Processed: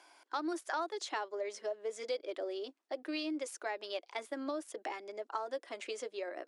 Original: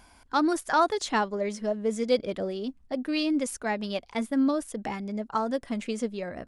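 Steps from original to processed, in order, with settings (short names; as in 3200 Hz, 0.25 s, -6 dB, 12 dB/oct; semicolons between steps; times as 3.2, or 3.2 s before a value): Chebyshev high-pass 320 Hz, order 5; high shelf 5100 Hz +4.5 dB; notch 470 Hz, Q 12; compressor 3:1, threshold -33 dBFS, peak gain reduction 12 dB; air absorption 60 m; gain -2.5 dB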